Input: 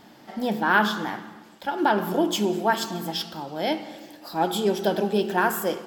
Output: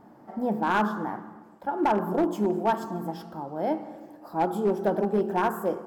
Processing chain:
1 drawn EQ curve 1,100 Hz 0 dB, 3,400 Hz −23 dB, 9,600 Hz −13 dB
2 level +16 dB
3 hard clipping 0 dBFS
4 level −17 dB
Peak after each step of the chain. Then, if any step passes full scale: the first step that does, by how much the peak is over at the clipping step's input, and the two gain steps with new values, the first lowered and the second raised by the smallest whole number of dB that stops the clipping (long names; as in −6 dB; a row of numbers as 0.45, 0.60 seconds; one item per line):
−9.0, +7.0, 0.0, −17.0 dBFS
step 2, 7.0 dB
step 2 +9 dB, step 4 −10 dB